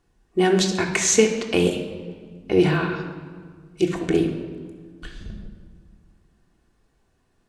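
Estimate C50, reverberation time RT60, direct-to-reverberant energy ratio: 7.0 dB, 1.7 s, 1.0 dB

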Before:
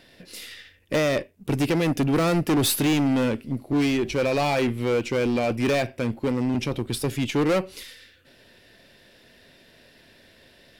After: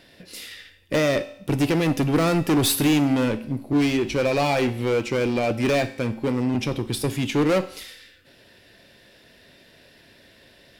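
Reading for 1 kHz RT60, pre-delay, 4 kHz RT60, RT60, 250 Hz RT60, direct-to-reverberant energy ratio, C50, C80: 0.70 s, 4 ms, 0.70 s, 0.70 s, 0.70 s, 10.5 dB, 15.5 dB, 17.5 dB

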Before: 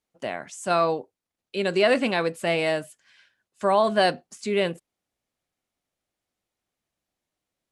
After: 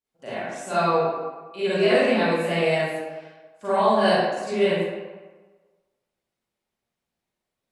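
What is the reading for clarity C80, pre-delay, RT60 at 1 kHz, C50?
-1.5 dB, 34 ms, 1.4 s, -6.0 dB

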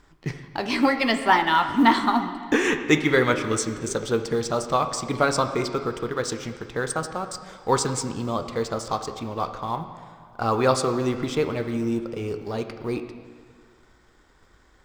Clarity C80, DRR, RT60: 10.0 dB, 7.5 dB, 1.9 s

